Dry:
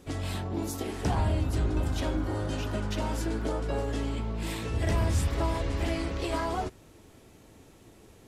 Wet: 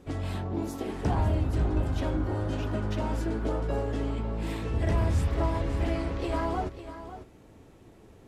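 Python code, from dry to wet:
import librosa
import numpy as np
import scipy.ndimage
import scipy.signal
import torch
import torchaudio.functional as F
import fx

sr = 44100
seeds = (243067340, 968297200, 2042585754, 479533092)

p1 = fx.high_shelf(x, sr, hz=2800.0, db=-10.5)
p2 = p1 + fx.echo_single(p1, sr, ms=548, db=-12.0, dry=0)
y = F.gain(torch.from_numpy(p2), 1.0).numpy()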